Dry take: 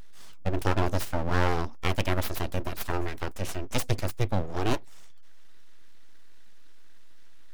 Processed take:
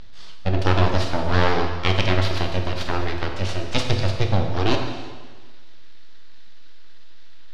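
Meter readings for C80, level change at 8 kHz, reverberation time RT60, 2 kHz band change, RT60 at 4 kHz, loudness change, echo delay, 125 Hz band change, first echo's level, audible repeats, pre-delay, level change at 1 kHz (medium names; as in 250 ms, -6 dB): 6.5 dB, 0.0 dB, 1.5 s, +7.5 dB, 1.4 s, +7.0 dB, no echo, +8.0 dB, no echo, no echo, 6 ms, +6.5 dB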